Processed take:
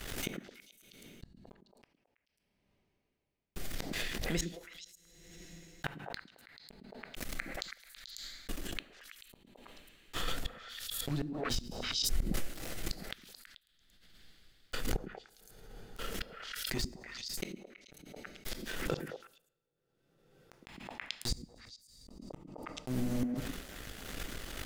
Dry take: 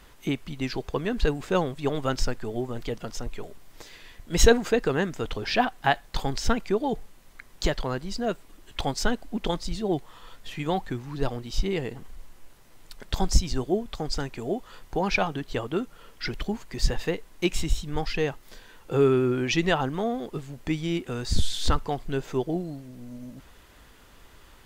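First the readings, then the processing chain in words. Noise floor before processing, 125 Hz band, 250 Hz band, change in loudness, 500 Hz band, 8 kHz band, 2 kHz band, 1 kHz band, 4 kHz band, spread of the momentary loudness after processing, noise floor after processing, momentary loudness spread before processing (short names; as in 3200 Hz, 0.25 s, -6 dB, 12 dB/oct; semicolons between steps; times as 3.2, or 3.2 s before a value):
-52 dBFS, -13.0 dB, -13.5 dB, -11.5 dB, -19.5 dB, -7.5 dB, -11.0 dB, -18.0 dB, -7.0 dB, 20 LU, -81 dBFS, 14 LU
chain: bell 970 Hz -14.5 dB 0.4 oct; notches 60/120/180/240/300/360/420/480/540 Hz; reverse; compressor 20:1, threshold -31 dBFS, peak gain reduction 22 dB; reverse; flipped gate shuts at -32 dBFS, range -39 dB; crossover distortion -55.5 dBFS; on a send: delay with a stepping band-pass 0.109 s, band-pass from 240 Hz, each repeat 1.4 oct, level -2 dB; on the sum: two-slope reverb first 0.7 s, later 3.3 s, from -27 dB, DRR 17 dB; backwards sustainer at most 37 dB/s; gain +11.5 dB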